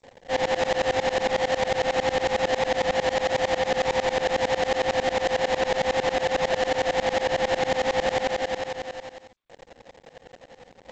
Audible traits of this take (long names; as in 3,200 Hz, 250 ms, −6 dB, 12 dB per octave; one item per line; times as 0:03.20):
a quantiser's noise floor 8 bits, dither none
tremolo saw up 11 Hz, depth 100%
aliases and images of a low sample rate 1,300 Hz, jitter 20%
G.722